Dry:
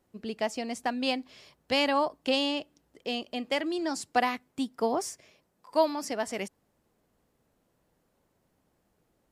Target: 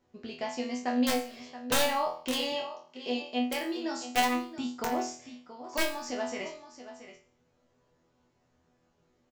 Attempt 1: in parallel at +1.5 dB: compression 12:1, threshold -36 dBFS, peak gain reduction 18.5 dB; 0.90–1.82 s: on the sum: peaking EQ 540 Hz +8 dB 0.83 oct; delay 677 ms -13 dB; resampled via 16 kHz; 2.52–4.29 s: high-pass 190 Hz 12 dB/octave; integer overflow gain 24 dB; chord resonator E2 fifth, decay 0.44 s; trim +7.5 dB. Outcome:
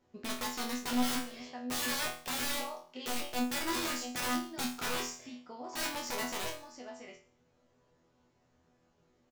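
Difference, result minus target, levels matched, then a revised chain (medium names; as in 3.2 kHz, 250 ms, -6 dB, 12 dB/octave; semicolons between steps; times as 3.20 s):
integer overflow: distortion +18 dB
in parallel at +1.5 dB: compression 12:1, threshold -36 dBFS, peak gain reduction 18.5 dB; 0.90–1.82 s: on the sum: peaking EQ 540 Hz +8 dB 0.83 oct; delay 677 ms -13 dB; resampled via 16 kHz; 2.52–4.29 s: high-pass 190 Hz 12 dB/octave; integer overflow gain 13.5 dB; chord resonator E2 fifth, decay 0.44 s; trim +7.5 dB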